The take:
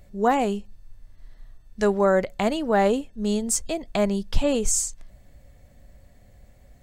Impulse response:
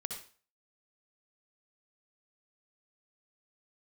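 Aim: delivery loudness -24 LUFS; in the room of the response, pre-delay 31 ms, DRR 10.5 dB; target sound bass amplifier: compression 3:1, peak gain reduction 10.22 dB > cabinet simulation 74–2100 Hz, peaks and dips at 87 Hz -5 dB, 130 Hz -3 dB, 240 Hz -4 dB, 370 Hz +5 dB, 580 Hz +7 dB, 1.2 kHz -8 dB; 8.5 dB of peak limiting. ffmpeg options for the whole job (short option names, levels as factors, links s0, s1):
-filter_complex "[0:a]alimiter=limit=0.178:level=0:latency=1,asplit=2[s0][s1];[1:a]atrim=start_sample=2205,adelay=31[s2];[s1][s2]afir=irnorm=-1:irlink=0,volume=0.316[s3];[s0][s3]amix=inputs=2:normalize=0,acompressor=threshold=0.0251:ratio=3,highpass=f=74:w=0.5412,highpass=f=74:w=1.3066,equalizer=f=87:t=q:w=4:g=-5,equalizer=f=130:t=q:w=4:g=-3,equalizer=f=240:t=q:w=4:g=-4,equalizer=f=370:t=q:w=4:g=5,equalizer=f=580:t=q:w=4:g=7,equalizer=f=1200:t=q:w=4:g=-8,lowpass=f=2100:w=0.5412,lowpass=f=2100:w=1.3066,volume=2.66"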